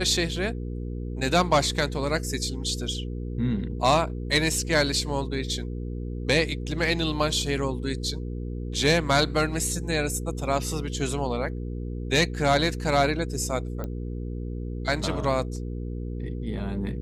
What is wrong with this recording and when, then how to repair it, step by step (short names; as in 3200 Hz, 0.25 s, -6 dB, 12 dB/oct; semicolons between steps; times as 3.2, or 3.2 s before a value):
hum 60 Hz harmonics 8 -32 dBFS
13.84 pop -20 dBFS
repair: de-click; de-hum 60 Hz, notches 8